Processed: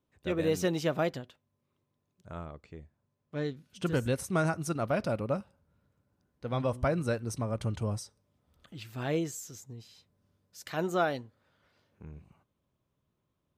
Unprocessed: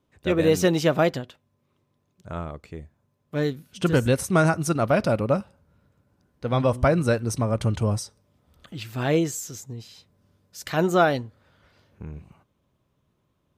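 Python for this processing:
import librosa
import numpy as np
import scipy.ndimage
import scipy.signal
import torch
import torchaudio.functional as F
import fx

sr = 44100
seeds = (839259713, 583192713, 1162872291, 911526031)

y = fx.lowpass(x, sr, hz=6700.0, slope=12, at=(2.46, 3.7))
y = fx.low_shelf(y, sr, hz=78.0, db=-12.0, at=(10.61, 12.04))
y = F.gain(torch.from_numpy(y), -9.0).numpy()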